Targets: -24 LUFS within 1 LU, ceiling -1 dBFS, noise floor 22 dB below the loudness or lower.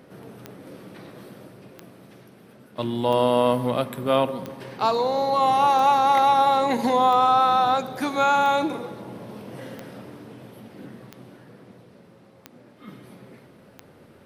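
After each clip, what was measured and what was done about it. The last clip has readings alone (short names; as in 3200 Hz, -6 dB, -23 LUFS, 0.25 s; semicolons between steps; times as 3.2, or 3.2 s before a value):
clicks 11; loudness -20.5 LUFS; peak -8.0 dBFS; loudness target -24.0 LUFS
-> de-click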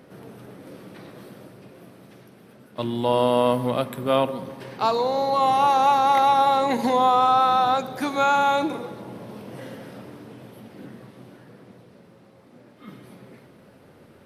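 clicks 0; loudness -20.5 LUFS; peak -8.0 dBFS; loudness target -24.0 LUFS
-> gain -3.5 dB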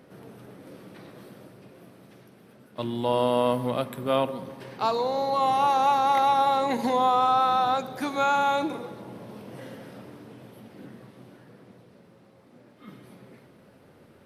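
loudness -24.5 LUFS; peak -11.5 dBFS; noise floor -55 dBFS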